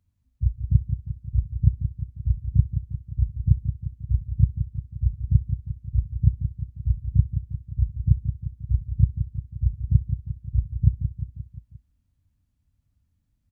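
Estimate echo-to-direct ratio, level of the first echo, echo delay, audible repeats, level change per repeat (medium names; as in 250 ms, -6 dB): -6.5 dB, -8.5 dB, 176 ms, 5, -4.5 dB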